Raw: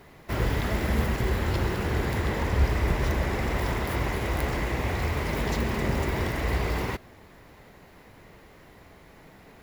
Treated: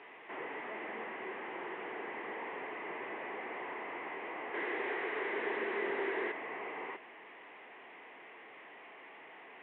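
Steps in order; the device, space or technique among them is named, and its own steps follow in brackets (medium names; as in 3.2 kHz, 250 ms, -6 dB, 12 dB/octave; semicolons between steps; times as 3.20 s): digital answering machine (band-pass 350–3300 Hz; one-bit delta coder 16 kbps, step -38.5 dBFS; cabinet simulation 360–3200 Hz, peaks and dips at 570 Hz -7 dB, 1.4 kHz -7 dB, 2 kHz +3 dB); 4.54–6.32 s: fifteen-band graphic EQ 400 Hz +10 dB, 1.6 kHz +8 dB, 4 kHz +12 dB; trim -6.5 dB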